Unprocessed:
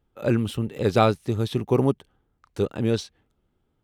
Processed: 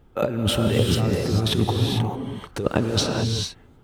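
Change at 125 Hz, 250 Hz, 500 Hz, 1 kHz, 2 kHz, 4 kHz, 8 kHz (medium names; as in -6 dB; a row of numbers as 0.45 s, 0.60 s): +4.5 dB, +1.5 dB, -0.5 dB, -2.0 dB, +2.5 dB, +11.5 dB, +12.5 dB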